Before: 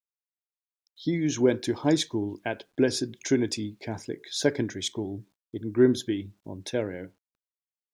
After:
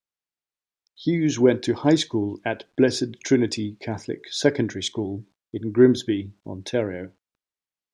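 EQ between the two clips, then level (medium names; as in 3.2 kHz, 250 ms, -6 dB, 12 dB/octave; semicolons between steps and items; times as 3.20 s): distance through air 55 m; +5.0 dB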